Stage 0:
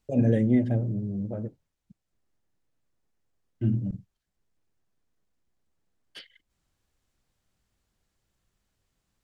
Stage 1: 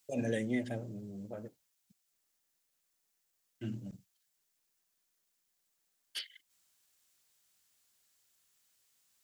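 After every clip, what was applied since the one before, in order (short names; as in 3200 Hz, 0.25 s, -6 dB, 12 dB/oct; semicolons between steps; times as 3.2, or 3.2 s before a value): tilt +4.5 dB/oct; gain -3 dB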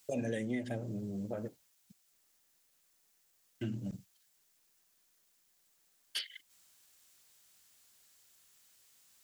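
compressor 3:1, threshold -43 dBFS, peak gain reduction 11 dB; gain +7.5 dB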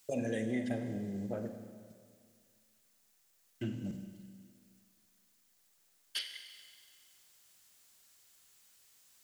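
Schroeder reverb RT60 2 s, combs from 32 ms, DRR 6.5 dB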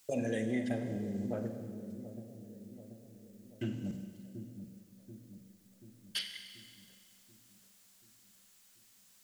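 dark delay 0.734 s, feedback 54%, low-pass 460 Hz, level -9 dB; gain +1 dB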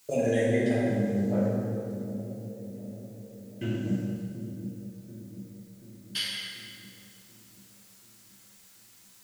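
plate-style reverb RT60 1.9 s, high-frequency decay 0.6×, DRR -5.5 dB; gain +2.5 dB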